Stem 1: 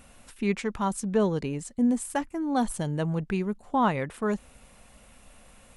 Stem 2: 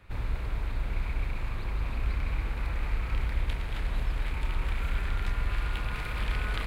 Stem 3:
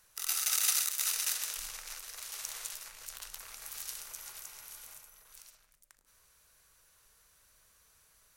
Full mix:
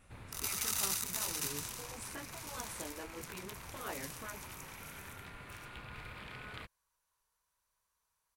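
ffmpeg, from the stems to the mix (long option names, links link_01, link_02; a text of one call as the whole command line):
ffmpeg -i stem1.wav -i stem2.wav -i stem3.wav -filter_complex "[0:a]flanger=delay=18:depth=2.3:speed=1.2,volume=-9dB[link_01];[1:a]volume=-11dB[link_02];[2:a]agate=range=-13dB:threshold=-56dB:ratio=16:detection=peak,equalizer=frequency=960:width_type=o:width=0.43:gain=13,adelay=150,volume=-5.5dB[link_03];[link_01][link_02][link_03]amix=inputs=3:normalize=0,afftfilt=real='re*lt(hypot(re,im),0.0631)':imag='im*lt(hypot(re,im),0.0631)':win_size=1024:overlap=0.75" out.wav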